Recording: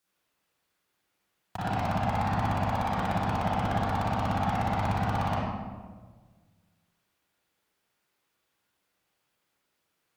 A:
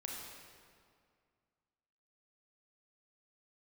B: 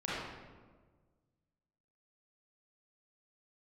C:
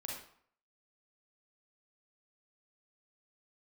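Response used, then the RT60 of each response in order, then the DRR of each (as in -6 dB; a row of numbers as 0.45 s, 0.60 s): B; 2.1 s, 1.5 s, 0.60 s; -2.0 dB, -9.0 dB, -2.5 dB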